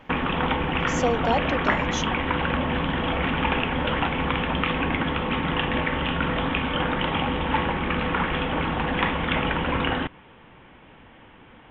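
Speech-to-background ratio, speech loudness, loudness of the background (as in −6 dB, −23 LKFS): −4.5 dB, −29.0 LKFS, −24.5 LKFS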